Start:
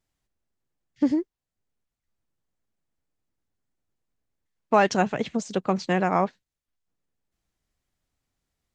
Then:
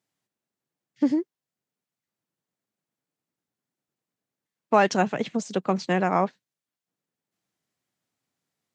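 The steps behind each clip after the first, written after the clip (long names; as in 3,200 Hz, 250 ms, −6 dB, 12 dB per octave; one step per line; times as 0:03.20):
high-pass filter 130 Hz 24 dB per octave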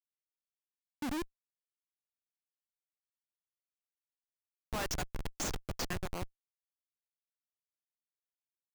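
band-pass filter sweep 270 Hz → 6,700 Hz, 0:00.97–0:01.80
comparator with hysteresis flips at −42.5 dBFS
level +7.5 dB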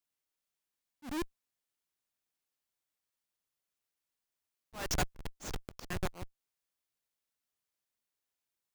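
volume swells 307 ms
level +6.5 dB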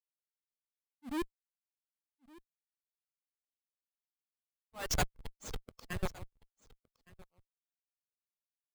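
spectral dynamics exaggerated over time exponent 1.5
single-tap delay 1,164 ms −22 dB
level +2 dB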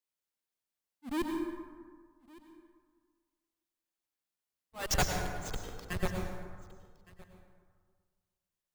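dense smooth reverb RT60 1.7 s, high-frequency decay 0.45×, pre-delay 85 ms, DRR 2.5 dB
level +2.5 dB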